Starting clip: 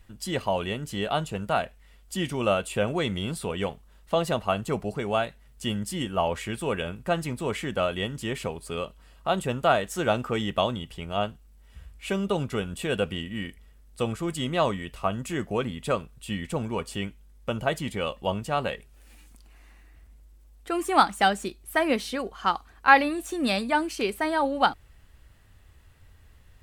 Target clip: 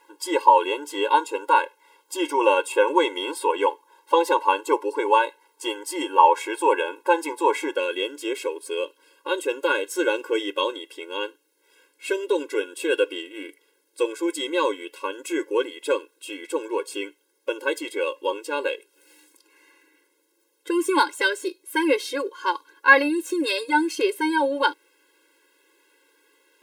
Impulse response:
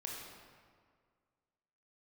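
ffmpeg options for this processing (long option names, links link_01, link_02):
-af "asetnsamples=nb_out_samples=441:pad=0,asendcmd='7.75 equalizer g -2.5',equalizer=frequency=890:width_type=o:width=0.59:gain=14,afftfilt=real='re*eq(mod(floor(b*sr/1024/280),2),1)':imag='im*eq(mod(floor(b*sr/1024/280),2),1)':win_size=1024:overlap=0.75,volume=6.5dB"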